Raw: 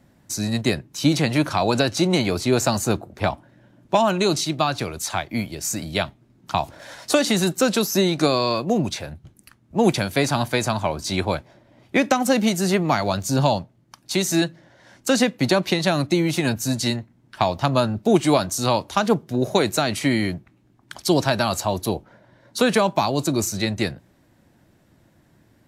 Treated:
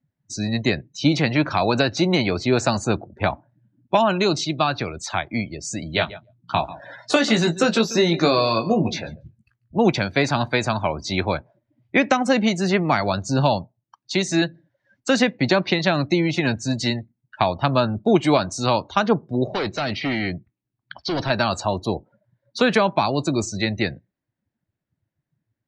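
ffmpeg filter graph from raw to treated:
ffmpeg -i in.wav -filter_complex "[0:a]asettb=1/sr,asplit=3[link_01][link_02][link_03];[link_01]atrim=end=5.924[link_04];[link_02]atrim=start=5.92:end=9.78,asetpts=PTS-STARTPTS,afade=type=in:duration=0.004:curve=qsin,afade=type=out:start_time=3.856:duration=0.004:curve=qsin,asplit=2[link_05][link_06];[link_06]adelay=18,volume=-5.5dB[link_07];[link_05][link_07]amix=inputs=2:normalize=0,atrim=end_sample=170226,aecho=1:1:142|284:0.168|0.0319,atrim=end_sample=170226[link_08];[link_03]atrim=start=9.776[link_09];[link_04][link_08]acrossfade=duration=0.004:curve1=hsin:curve2=qsin[link_10];[link_10][link_09]acrossfade=duration=0.004:curve1=qsin:curve2=hsin,asettb=1/sr,asplit=3[link_11][link_12][link_13];[link_11]atrim=end=19.474[link_14];[link_12]atrim=start=19.47:end=21.3,asetpts=PTS-STARTPTS,afade=type=in:duration=0.004:curve=qsin,afade=type=out:start_time=1.826:duration=0.004:curve=qsin,highshelf=frequency=6100:width_type=q:width=1.5:gain=-9,volume=21dB,asoftclip=hard,volume=-21dB[link_15];[link_13]atrim=start=21.296[link_16];[link_14][link_15]acrossfade=duration=0.004:curve1=hsin:curve2=qsin[link_17];[link_17][link_16]acrossfade=duration=0.004:curve1=qsin:curve2=hsin,lowpass=6000,afftdn=noise_reduction=28:noise_floor=-38,equalizer=frequency=2000:width_type=o:width=1.2:gain=3.5" out.wav

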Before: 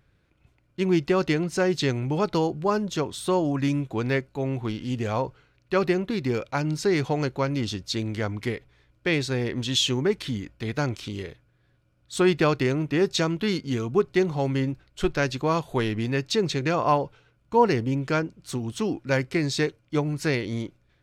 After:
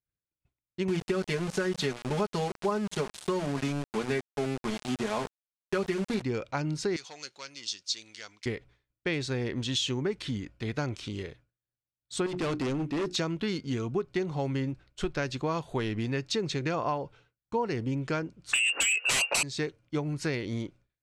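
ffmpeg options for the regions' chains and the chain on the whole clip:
ffmpeg -i in.wav -filter_complex "[0:a]asettb=1/sr,asplit=3[link_01][link_02][link_03];[link_01]atrim=end=0.884[link_04];[link_02]atrim=start=0.88:end=6.22,asetpts=PTS-STARTPTS,afade=type=in:duration=0.004:curve=qsin,afade=type=out:start_time=5.336:duration=0.004:curve=qsin,bandreject=frequency=60:width_type=h:width=6,bandreject=frequency=120:width_type=h:width=6,bandreject=frequency=180:width_type=h:width=6,bandreject=frequency=240:width_type=h:width=6,aecho=1:1:4.8:0.95,atrim=end_sample=235494,aeval=exprs='val(0)*gte(abs(val(0)),0.0447)':channel_layout=same[link_05];[link_03]atrim=start=6.216[link_06];[link_04][link_05]acrossfade=duration=0.004:curve1=hsin:curve2=qsin[link_07];[link_07][link_06]acrossfade=duration=0.004:curve1=qsin:curve2=hsin,asettb=1/sr,asplit=3[link_08][link_09][link_10];[link_08]atrim=end=6.964[link_11];[link_09]atrim=start=6.96:end=8.46,asetpts=PTS-STARTPTS,afade=type=in:duration=0.004:curve=qsin,afade=type=out:start_time=1.496:duration=0.004:curve=qsin,aeval=exprs='0.237*sin(PI/2*1.41*val(0)/0.237)':channel_layout=same,bandpass=frequency=5700:width_type=q:width=1.5[link_12];[link_10]atrim=start=8.456[link_13];[link_11][link_12]acrossfade=duration=0.004:curve1=hsin:curve2=qsin[link_14];[link_14][link_13]acrossfade=duration=0.004:curve1=qsin:curve2=hsin,asettb=1/sr,asplit=3[link_15][link_16][link_17];[link_15]atrim=end=12.264[link_18];[link_16]atrim=start=12.26:end=13.16,asetpts=PTS-STARTPTS,afade=type=in:duration=0.004:curve=qsin,afade=type=out:start_time=0.896:duration=0.004:curve=qsin,equalizer=frequency=270:width_type=o:width=0.55:gain=5,bandreject=frequency=60:width_type=h:width=6,bandreject=frequency=120:width_type=h:width=6,bandreject=frequency=180:width_type=h:width=6,bandreject=frequency=240:width_type=h:width=6,bandreject=frequency=300:width_type=h:width=6,bandreject=frequency=360:width_type=h:width=6,asoftclip=type=hard:threshold=-24dB[link_19];[link_17]atrim=start=13.156[link_20];[link_18][link_19]acrossfade=duration=0.004:curve1=hsin:curve2=qsin[link_21];[link_21][link_20]acrossfade=duration=0.004:curve1=qsin:curve2=hsin,asettb=1/sr,asplit=3[link_22][link_23][link_24];[link_22]atrim=end=18.534[link_25];[link_23]atrim=start=18.53:end=19.43,asetpts=PTS-STARTPTS,afade=type=in:duration=0.004:curve=qsin,afade=type=out:start_time=0.896:duration=0.004:curve=qsin,lowpass=frequency=2500:width_type=q:width=0.5098,lowpass=frequency=2500:width_type=q:width=0.6013,lowpass=frequency=2500:width_type=q:width=0.9,lowpass=frequency=2500:width_type=q:width=2.563,afreqshift=-2900,highpass=frequency=460:width_type=q:width=2,aeval=exprs='0.398*sin(PI/2*8.91*val(0)/0.398)':channel_layout=same[link_26];[link_24]atrim=start=19.426[link_27];[link_25][link_26]acrossfade=duration=0.004:curve1=hsin:curve2=qsin[link_28];[link_28][link_27]acrossfade=duration=0.004:curve1=qsin:curve2=hsin,agate=range=-33dB:threshold=-47dB:ratio=3:detection=peak,lowpass=frequency=10000:width=0.5412,lowpass=frequency=10000:width=1.3066,acompressor=threshold=-23dB:ratio=5,volume=-3dB" out.wav

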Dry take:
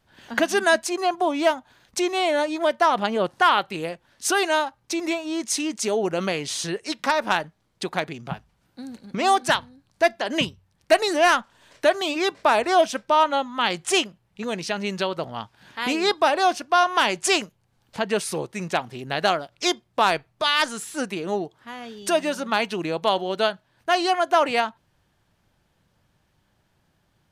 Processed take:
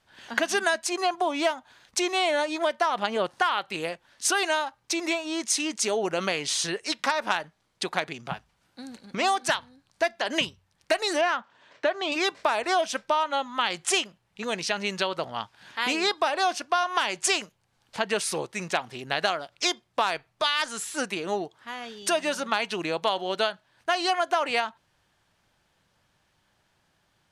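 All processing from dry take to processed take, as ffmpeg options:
ffmpeg -i in.wav -filter_complex "[0:a]asettb=1/sr,asplit=3[link_01][link_02][link_03];[link_01]atrim=end=11.214[link_04];[link_02]atrim=start=11.21:end=12.12,asetpts=PTS-STARTPTS,afade=type=in:duration=0.004:curve=qsin,afade=type=out:start_time=0.906:duration=0.004:curve=qsin,highpass=120,lowpass=6900,aemphasis=mode=reproduction:type=75kf[link_05];[link_03]atrim=start=12.116[link_06];[link_04][link_05]acrossfade=duration=0.004:curve1=hsin:curve2=qsin[link_07];[link_07][link_06]acrossfade=duration=0.004:curve1=qsin:curve2=hsin,lowpass=11000,lowshelf=frequency=480:gain=-9.5,acompressor=threshold=-23dB:ratio=6,volume=2.5dB" out.wav

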